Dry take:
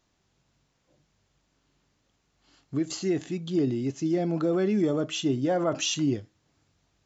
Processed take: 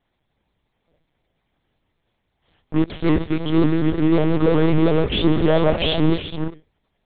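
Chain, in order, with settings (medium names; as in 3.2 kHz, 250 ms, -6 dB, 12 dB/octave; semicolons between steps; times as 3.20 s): comb of notches 1.4 kHz; gated-style reverb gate 440 ms rising, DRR 10 dB; in parallel at -7 dB: fuzz box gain 33 dB, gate -36 dBFS; on the sum: monotone LPC vocoder at 8 kHz 160 Hz; vibrato with a chosen wave saw up 5.5 Hz, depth 100 cents; trim +2.5 dB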